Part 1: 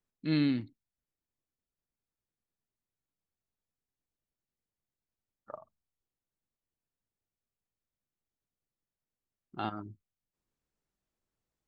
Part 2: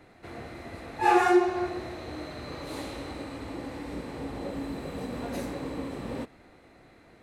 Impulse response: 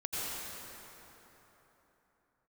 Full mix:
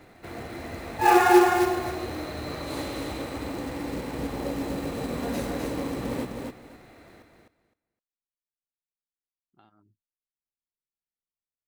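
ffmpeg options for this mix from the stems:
-filter_complex "[0:a]acompressor=threshold=-36dB:ratio=6,volume=-19dB[a];[1:a]acrusher=bits=4:mode=log:mix=0:aa=0.000001,volume=3dB,asplit=2[b][c];[c]volume=-4dB,aecho=0:1:257|514|771:1|0.18|0.0324[d];[a][b][d]amix=inputs=3:normalize=0"

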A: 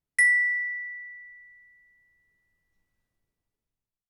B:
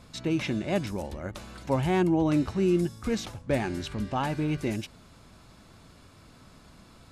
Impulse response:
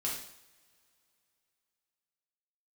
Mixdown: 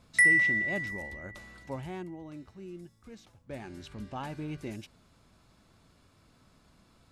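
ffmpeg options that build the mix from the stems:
-filter_complex "[0:a]volume=-1dB[a];[1:a]volume=2dB,afade=t=out:st=1.48:d=0.7:silence=0.266073,afade=t=in:st=3.28:d=0.74:silence=0.281838[b];[a][b]amix=inputs=2:normalize=0"

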